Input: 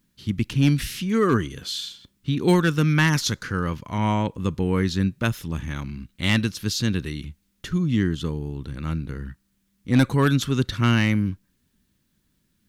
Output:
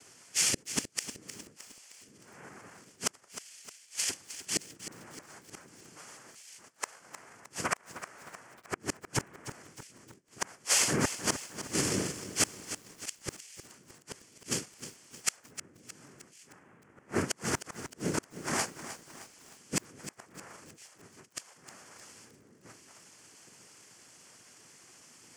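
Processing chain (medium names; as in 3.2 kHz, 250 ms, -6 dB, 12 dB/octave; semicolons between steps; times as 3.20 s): overdrive pedal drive 21 dB, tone 3.3 kHz, clips at -9.5 dBFS; in parallel at -1 dB: peak limiter -19.5 dBFS, peak gain reduction 10 dB; on the sum: high-pass 240 Hz 12 dB/octave; plain phase-vocoder stretch 2×; word length cut 10-bit, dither triangular; noise-vocoded speech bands 3; peaking EQ 3.8 kHz -14 dB 0.24 oct; inverted gate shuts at -17 dBFS, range -36 dB; treble shelf 4.9 kHz +9 dB; bit-crushed delay 309 ms, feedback 55%, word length 8-bit, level -11.5 dB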